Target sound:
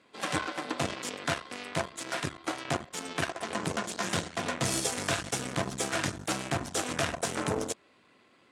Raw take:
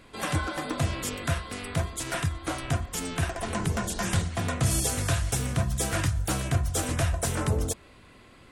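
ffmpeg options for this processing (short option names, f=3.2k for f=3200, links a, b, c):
-af "aeval=exprs='0.211*(cos(1*acos(clip(val(0)/0.211,-1,1)))-cos(1*PI/2))+0.0376*(cos(6*acos(clip(val(0)/0.211,-1,1)))-cos(6*PI/2))+0.0188*(cos(7*acos(clip(val(0)/0.211,-1,1)))-cos(7*PI/2))+0.0422*(cos(8*acos(clip(val(0)/0.211,-1,1)))-cos(8*PI/2))':c=same,highpass=220,lowpass=7.8k,acontrast=83,volume=-6.5dB"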